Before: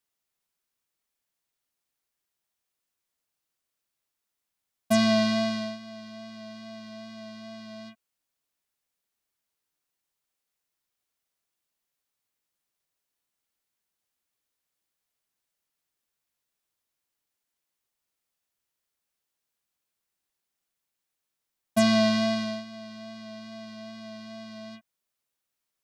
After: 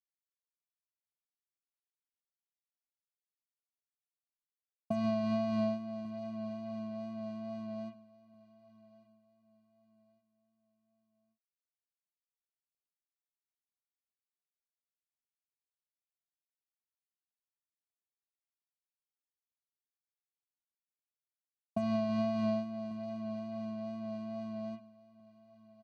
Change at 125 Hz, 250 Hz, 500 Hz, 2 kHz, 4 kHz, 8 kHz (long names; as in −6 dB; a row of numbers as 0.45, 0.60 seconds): −4.5 dB, −7.0 dB, −6.5 dB, −18.5 dB, −20.5 dB, below −25 dB